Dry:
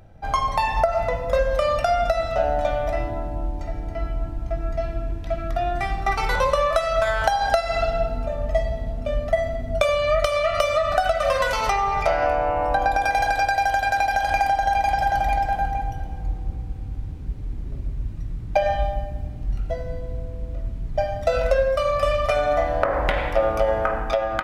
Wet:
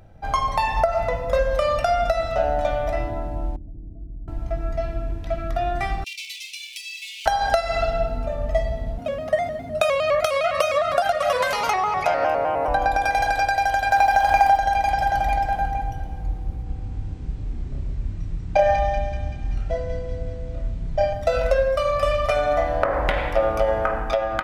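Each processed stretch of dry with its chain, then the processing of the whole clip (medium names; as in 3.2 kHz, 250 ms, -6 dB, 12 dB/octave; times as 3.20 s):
3.56–4.28 s: compression 2:1, threshold -27 dBFS + four-pole ladder low-pass 350 Hz, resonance 25% + loudspeaker Doppler distortion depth 0.19 ms
6.04–7.26 s: comb filter that takes the minimum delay 8 ms + steep high-pass 2.3 kHz 96 dB/octave
8.98–12.68 s: high-pass 130 Hz + peaking EQ 11 kHz +5 dB 0.35 oct + vibrato with a chosen wave square 4.9 Hz, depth 100 cents
13.91–14.57 s: send-on-delta sampling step -43.5 dBFS + peaking EQ 960 Hz +6.5 dB 0.97 oct
16.63–21.13 s: steep low-pass 8.9 kHz 72 dB/octave + doubling 30 ms -3.5 dB + feedback echo behind a high-pass 191 ms, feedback 61%, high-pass 2 kHz, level -4.5 dB
whole clip: none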